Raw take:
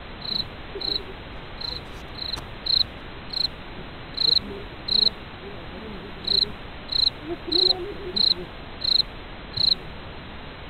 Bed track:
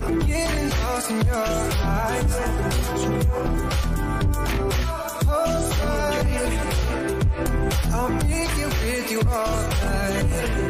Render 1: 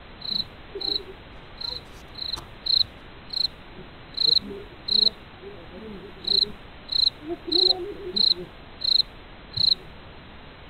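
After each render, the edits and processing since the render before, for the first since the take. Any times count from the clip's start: noise print and reduce 6 dB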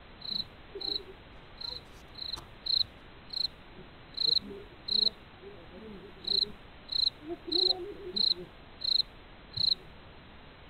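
gain -7.5 dB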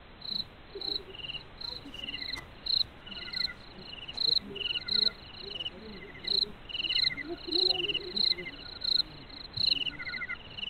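feedback echo 0.453 s, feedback 33%, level -18.5 dB; echoes that change speed 0.791 s, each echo -6 st, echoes 3, each echo -6 dB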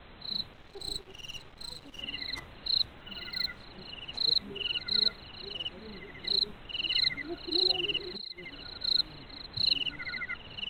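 0.53–1.99 half-wave gain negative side -12 dB; 2.95–3.58 decimation joined by straight lines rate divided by 2×; 8.16–8.63 compressor, threshold -39 dBFS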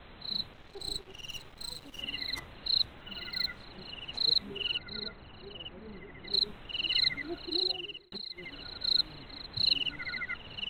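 1.3–2.39 high shelf 9800 Hz +11 dB; 4.77–6.33 air absorption 430 m; 7.37–8.12 fade out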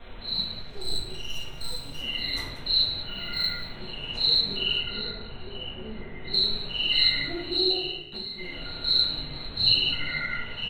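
echo 0.185 s -13.5 dB; shoebox room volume 140 m³, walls mixed, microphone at 1.7 m

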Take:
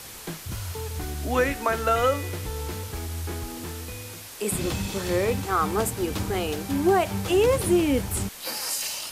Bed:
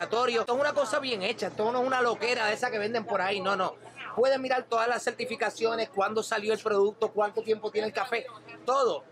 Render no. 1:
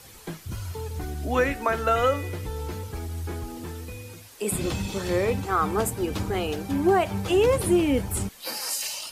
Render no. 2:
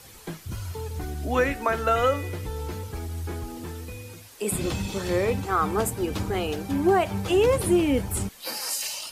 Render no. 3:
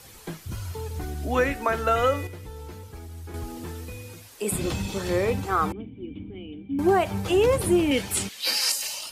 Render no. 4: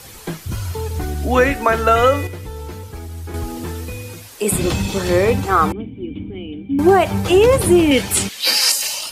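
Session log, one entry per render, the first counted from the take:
denoiser 9 dB, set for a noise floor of -41 dBFS
nothing audible
2.27–3.34 gain -7 dB; 5.72–6.79 vocal tract filter i; 7.91–8.72 weighting filter D
gain +9 dB; limiter -3 dBFS, peak gain reduction 1.5 dB

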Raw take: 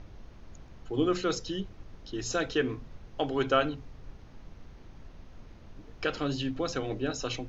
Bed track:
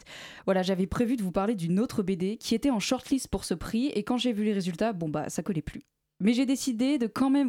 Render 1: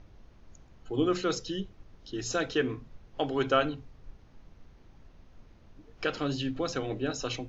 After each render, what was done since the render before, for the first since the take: noise print and reduce 6 dB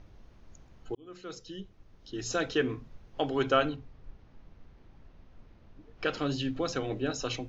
0.95–2.46 fade in; 3.76–6.06 air absorption 100 m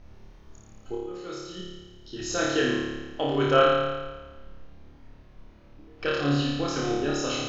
flutter echo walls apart 4.8 m, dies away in 1.3 s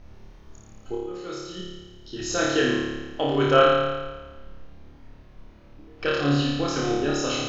gain +2.5 dB

